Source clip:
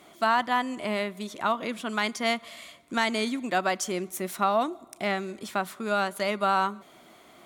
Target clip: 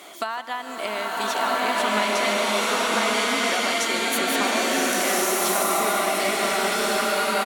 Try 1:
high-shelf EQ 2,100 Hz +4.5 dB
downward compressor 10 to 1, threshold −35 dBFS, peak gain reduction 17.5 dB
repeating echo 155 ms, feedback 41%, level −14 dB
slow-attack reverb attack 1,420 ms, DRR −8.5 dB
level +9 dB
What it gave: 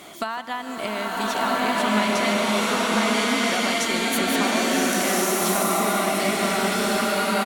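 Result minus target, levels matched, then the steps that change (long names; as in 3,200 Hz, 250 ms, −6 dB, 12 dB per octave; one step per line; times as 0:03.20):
250 Hz band +5.5 dB
add first: high-pass filter 350 Hz 12 dB per octave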